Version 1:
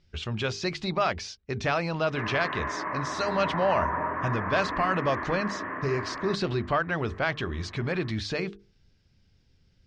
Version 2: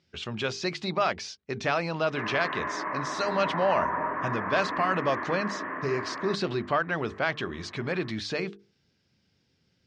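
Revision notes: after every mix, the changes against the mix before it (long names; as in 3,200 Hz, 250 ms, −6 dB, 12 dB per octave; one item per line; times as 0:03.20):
master: add high-pass filter 160 Hz 12 dB per octave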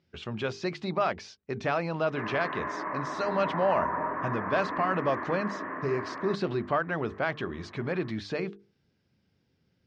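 master: add high-shelf EQ 2,600 Hz −11 dB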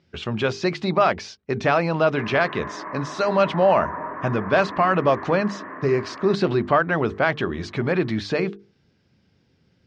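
speech +9.0 dB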